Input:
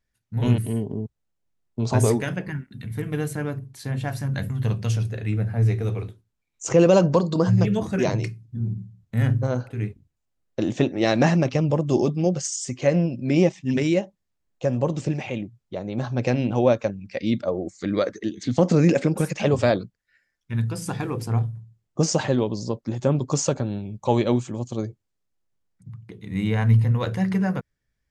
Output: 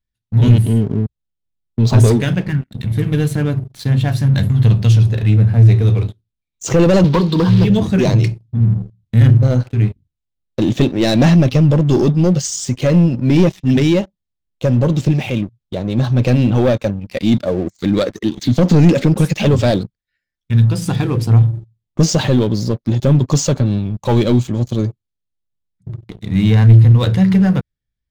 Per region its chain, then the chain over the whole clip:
7.04–7.7 block floating point 5-bit + speaker cabinet 150–5100 Hz, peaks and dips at 240 Hz -4 dB, 400 Hz +3 dB, 610 Hz -9 dB, 980 Hz +7 dB
whole clip: bell 3600 Hz +10 dB 0.9 oct; sample leveller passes 3; low shelf 280 Hz +11.5 dB; gain -7 dB

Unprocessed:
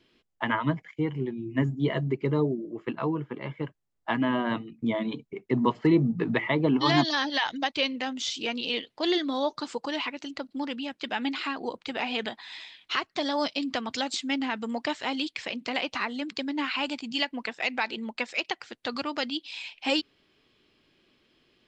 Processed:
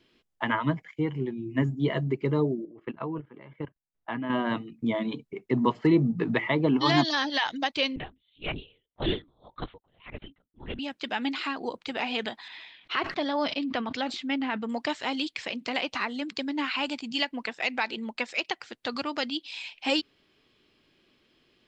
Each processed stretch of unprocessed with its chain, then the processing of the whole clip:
2.65–4.3 LPF 3000 Hz + level quantiser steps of 16 dB
7.96–10.79 LPC vocoder at 8 kHz whisper + dB-linear tremolo 1.8 Hz, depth 39 dB
12.48–14.69 LPF 3200 Hz + sustainer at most 81 dB/s
whole clip: dry

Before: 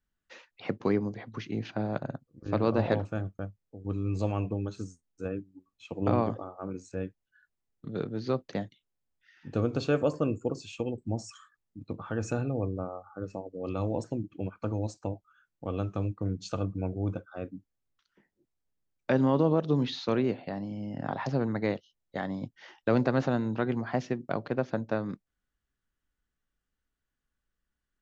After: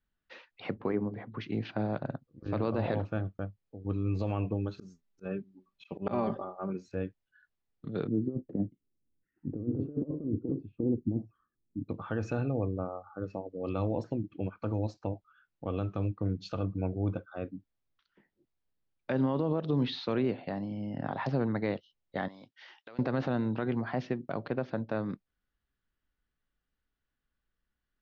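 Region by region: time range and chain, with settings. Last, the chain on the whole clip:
0.74–1.41 LPF 1900 Hz + notches 50/100/150/200/250/300/350/400 Hz
4.78–6.88 comb 5.1 ms, depth 71% + auto swell 0.119 s
8.08–11.89 negative-ratio compressor -32 dBFS, ratio -0.5 + synth low-pass 310 Hz, resonance Q 2
22.28–22.99 HPF 1000 Hz 6 dB/oct + high shelf 4000 Hz +7 dB + compressor, threshold -47 dBFS
whole clip: LPF 4600 Hz 24 dB/oct; limiter -20 dBFS

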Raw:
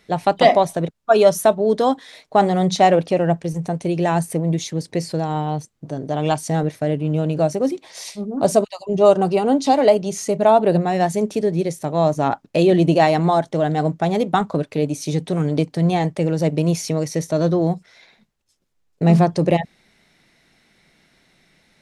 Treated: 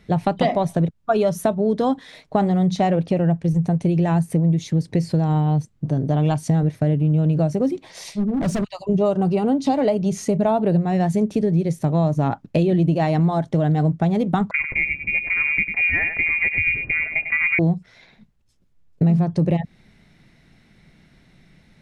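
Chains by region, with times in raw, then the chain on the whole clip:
8.14–8.75 LPF 8700 Hz + dynamic EQ 510 Hz, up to -5 dB, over -24 dBFS, Q 0.8 + hard clip -23.5 dBFS
14.51–17.59 inverted band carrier 2600 Hz + echo 98 ms -9 dB
whole clip: tone controls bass +13 dB, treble -5 dB; compressor 5:1, threshold -16 dBFS

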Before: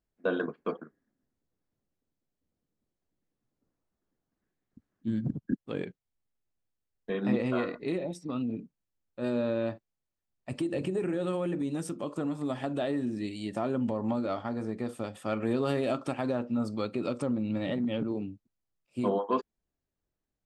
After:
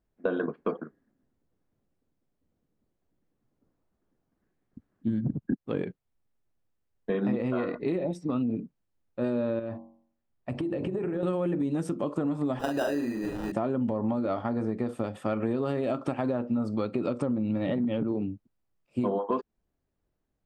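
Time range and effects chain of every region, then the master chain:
9.59–11.23 high shelf 5500 Hz -10.5 dB + de-hum 46.76 Hz, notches 24 + compressor 10:1, threshold -33 dBFS
12.59–13.52 tone controls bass -14 dB, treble +4 dB + sample-rate reducer 2200 Hz + doubler 42 ms -3.5 dB
whole clip: high shelf 2600 Hz -12 dB; compressor, threshold -32 dBFS; gain +7.5 dB

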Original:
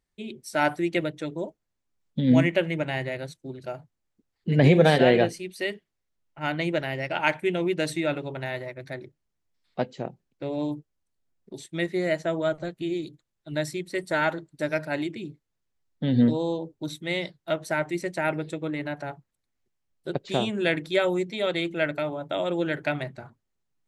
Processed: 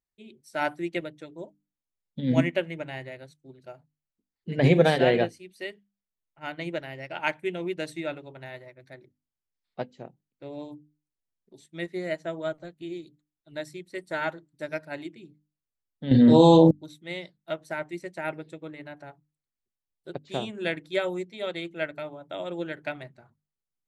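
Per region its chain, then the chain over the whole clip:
16.11–16.71 doubler 37 ms -7 dB + fast leveller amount 100%
whole clip: notches 50/100/150/200/250/300 Hz; upward expander 1.5:1, over -38 dBFS

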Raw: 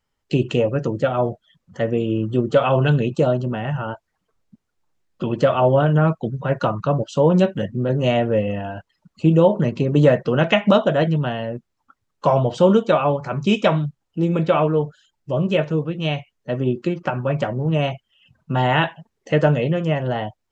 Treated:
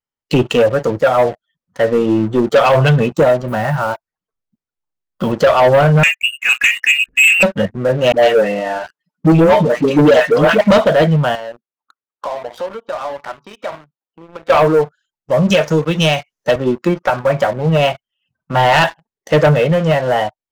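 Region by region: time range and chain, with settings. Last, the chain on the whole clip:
3.48–5.32 block floating point 7-bit + low shelf 92 Hz +5.5 dB
6.03–7.43 steep high-pass 230 Hz 72 dB/oct + inverted band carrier 3100 Hz
8.12–10.61 HPF 170 Hz 24 dB/oct + comb 6.7 ms, depth 63% + dispersion highs, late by 0.113 s, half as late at 680 Hz
11.35–14.5 HPF 320 Hz + compressor 4:1, threshold -32 dBFS + air absorption 180 m
15.5–16.56 bell 6000 Hz +11.5 dB 0.91 oct + three-band squash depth 100%
whole clip: spectral noise reduction 9 dB; low shelf 110 Hz -8 dB; sample leveller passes 3

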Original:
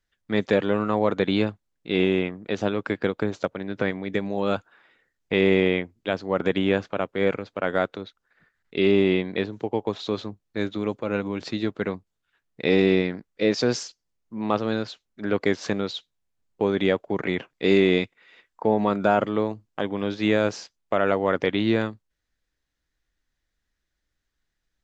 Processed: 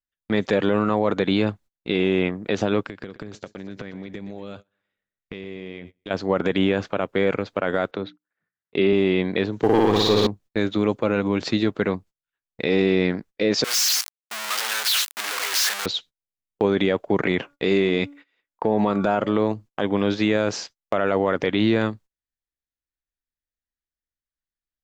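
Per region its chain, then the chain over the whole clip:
2.84–6.11 bell 920 Hz -7 dB 2.4 oct + compressor 20:1, threshold -37 dBFS + feedback echo 0.122 s, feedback 48%, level -14 dB
7.91–8.93 HPF 89 Hz + air absorption 160 m + notches 60/120/180/240/300 Hz
9.62–10.27 sample leveller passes 2 + flutter echo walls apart 9.8 m, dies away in 1.2 s
13.64–15.86 infinite clipping + HPF 1300 Hz
17.31–19.52 de-hum 286 Hz, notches 5 + compressor 2:1, threshold -23 dBFS
whole clip: gate -47 dBFS, range -25 dB; limiter -17 dBFS; gain +7 dB

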